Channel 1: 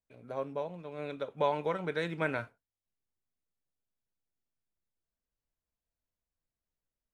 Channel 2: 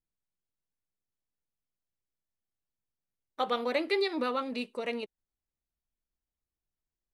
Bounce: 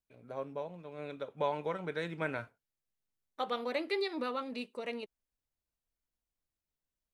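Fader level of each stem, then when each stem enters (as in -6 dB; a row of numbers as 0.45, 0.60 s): -3.5, -5.0 dB; 0.00, 0.00 s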